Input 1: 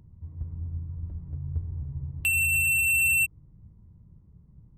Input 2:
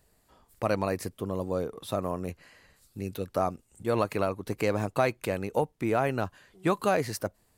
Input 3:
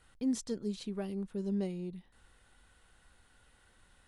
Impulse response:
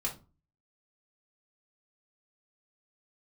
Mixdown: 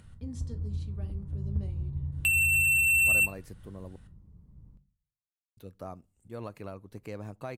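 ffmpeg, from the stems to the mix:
-filter_complex "[0:a]volume=-2dB,asplit=2[link_01][link_02];[link_02]volume=-11dB[link_03];[1:a]lowshelf=frequency=220:gain=9.5,adelay=2450,volume=-16.5dB,asplit=3[link_04][link_05][link_06];[link_04]atrim=end=3.96,asetpts=PTS-STARTPTS,afade=type=out:start_time=3.956:duration=0.004:curve=hsin[link_07];[link_05]atrim=start=3.96:end=5.57,asetpts=PTS-STARTPTS,volume=0[link_08];[link_06]atrim=start=5.57,asetpts=PTS-STARTPTS,afade=type=in:duration=0.004:curve=hsin[link_09];[link_07][link_08][link_09]concat=n=3:v=0:a=1,asplit=2[link_10][link_11];[link_11]volume=-23.5dB[link_12];[2:a]acompressor=mode=upward:threshold=-43dB:ratio=2.5,volume=-14.5dB,asplit=2[link_13][link_14];[link_14]volume=-5dB[link_15];[3:a]atrim=start_sample=2205[link_16];[link_03][link_12][link_15]amix=inputs=3:normalize=0[link_17];[link_17][link_16]afir=irnorm=-1:irlink=0[link_18];[link_01][link_10][link_13][link_18]amix=inputs=4:normalize=0"

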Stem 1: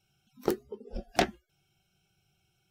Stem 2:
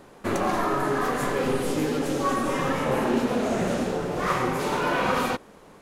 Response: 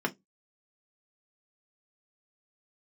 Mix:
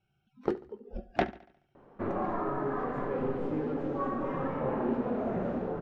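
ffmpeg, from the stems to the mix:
-filter_complex "[0:a]lowpass=2100,volume=-1.5dB,asplit=2[link_01][link_02];[link_02]volume=-18.5dB[link_03];[1:a]lowpass=1200,adelay=1750,volume=-6.5dB[link_04];[link_03]aecho=0:1:71|142|213|284|355|426|497:1|0.49|0.24|0.118|0.0576|0.0282|0.0138[link_05];[link_01][link_04][link_05]amix=inputs=3:normalize=0"

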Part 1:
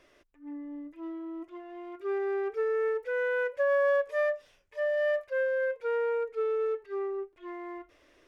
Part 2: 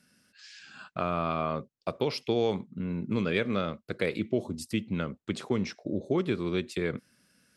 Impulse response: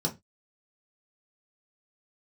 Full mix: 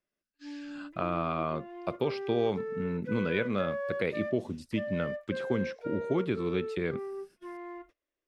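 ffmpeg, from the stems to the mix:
-filter_complex "[0:a]acompressor=threshold=-41dB:ratio=2,volume=0dB[link_01];[1:a]acrossover=split=3600[link_02][link_03];[link_03]acompressor=threshold=-57dB:ratio=4:attack=1:release=60[link_04];[link_02][link_04]amix=inputs=2:normalize=0,volume=-1.5dB[link_05];[link_01][link_05]amix=inputs=2:normalize=0,agate=range=-29dB:threshold=-53dB:ratio=16:detection=peak"

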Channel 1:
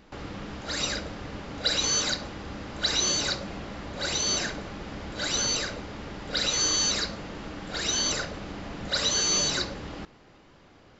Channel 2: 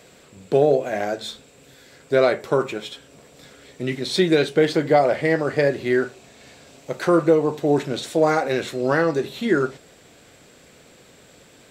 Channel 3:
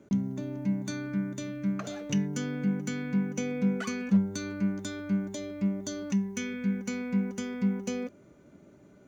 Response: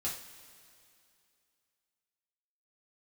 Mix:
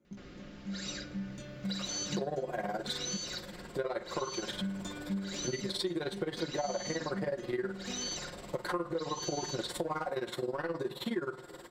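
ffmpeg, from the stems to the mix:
-filter_complex "[0:a]equalizer=frequency=890:width=2.2:gain=-9.5,adelay=50,volume=-12.5dB[link_01];[1:a]equalizer=frequency=200:width_type=o:width=0.33:gain=-6,equalizer=frequency=1000:width_type=o:width=0.33:gain=11,equalizer=frequency=2500:width_type=o:width=0.33:gain=-8,equalizer=frequency=6300:width_type=o:width=0.33:gain=-10,acontrast=39,tremolo=f=19:d=0.89,adelay=1650,volume=-4dB,asplit=2[link_02][link_03];[link_03]volume=-19.5dB[link_04];[2:a]flanger=delay=18:depth=3.8:speed=0.33,dynaudnorm=framelen=310:gausssize=9:maxgain=12dB,volume=-14dB,asplit=3[link_05][link_06][link_07];[link_05]atrim=end=3.17,asetpts=PTS-STARTPTS,afade=type=out:start_time=3.166:duration=0.004:curve=hsin[link_08];[link_06]atrim=start=3.17:end=4.49,asetpts=PTS-STARTPTS,volume=0[link_09];[link_07]atrim=start=4.49,asetpts=PTS-STARTPTS,afade=type=in:duration=0.004:curve=hsin[link_10];[link_08][link_09][link_10]concat=n=3:v=0:a=1[link_11];[link_02][link_11]amix=inputs=2:normalize=0,alimiter=limit=-17dB:level=0:latency=1:release=250,volume=0dB[link_12];[3:a]atrim=start_sample=2205[link_13];[link_04][link_13]afir=irnorm=-1:irlink=0[link_14];[link_01][link_12][link_14]amix=inputs=3:normalize=0,aecho=1:1:5.6:0.52,acompressor=threshold=-33dB:ratio=4"

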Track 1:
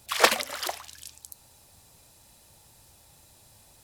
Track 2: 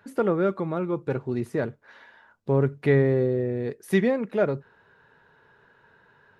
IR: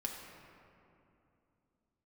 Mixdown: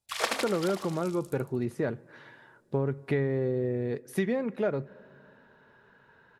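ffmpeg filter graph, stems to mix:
-filter_complex "[0:a]agate=range=-22dB:threshold=-48dB:ratio=16:detection=peak,lowpass=12000,volume=-6dB,asplit=2[link_01][link_02];[link_02]volume=-5dB[link_03];[1:a]adelay=250,volume=-2dB,asplit=2[link_04][link_05];[link_05]volume=-22.5dB[link_06];[2:a]atrim=start_sample=2205[link_07];[link_06][link_07]afir=irnorm=-1:irlink=0[link_08];[link_03]aecho=0:1:76|152|228|304|380|456|532|608:1|0.52|0.27|0.141|0.0731|0.038|0.0198|0.0103[link_09];[link_01][link_04][link_08][link_09]amix=inputs=4:normalize=0,acompressor=threshold=-24dB:ratio=6"

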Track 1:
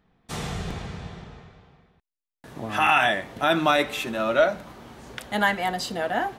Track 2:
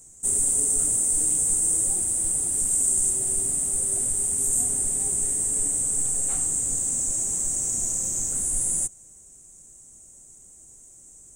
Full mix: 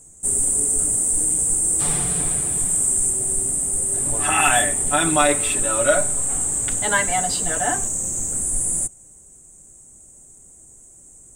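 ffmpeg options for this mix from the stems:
ffmpeg -i stem1.wav -i stem2.wav -filter_complex "[0:a]aecho=1:1:6.9:0.99,adelay=1500,volume=-8dB[link_01];[1:a]aemphasis=mode=reproduction:type=75fm,aexciter=amount=3.9:drive=6.4:freq=7500,volume=-2dB[link_02];[link_01][link_02]amix=inputs=2:normalize=0,acontrast=64" out.wav

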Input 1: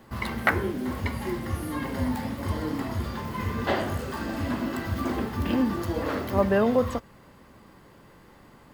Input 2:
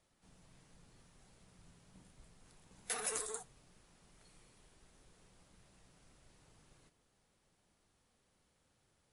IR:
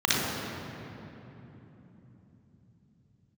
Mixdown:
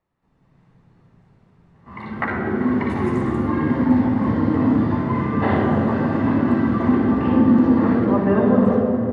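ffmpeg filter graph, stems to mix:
-filter_complex "[0:a]highpass=110,dynaudnorm=framelen=100:gausssize=5:maxgain=11dB,adelay=1750,volume=-16.5dB,asplit=2[link_01][link_02];[link_02]volume=-9.5dB[link_03];[1:a]volume=-2dB,asplit=2[link_04][link_05];[link_05]volume=-15dB[link_06];[2:a]atrim=start_sample=2205[link_07];[link_03][link_06]amix=inputs=2:normalize=0[link_08];[link_08][link_07]afir=irnorm=-1:irlink=0[link_09];[link_01][link_04][link_09]amix=inputs=3:normalize=0,dynaudnorm=framelen=310:gausssize=3:maxgain=6dB,lowpass=frequency=2300:poles=1,aemphasis=mode=reproduction:type=75kf"

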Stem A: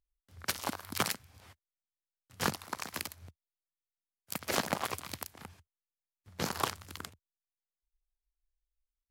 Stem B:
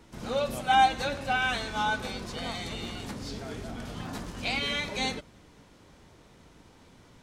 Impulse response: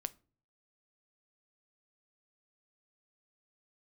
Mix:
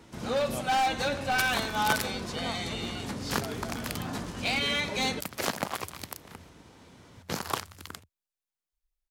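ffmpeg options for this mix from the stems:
-filter_complex "[0:a]adelay=900,volume=1dB[link_01];[1:a]highpass=59,asoftclip=type=hard:threshold=-25.5dB,volume=2.5dB[link_02];[link_01][link_02]amix=inputs=2:normalize=0"

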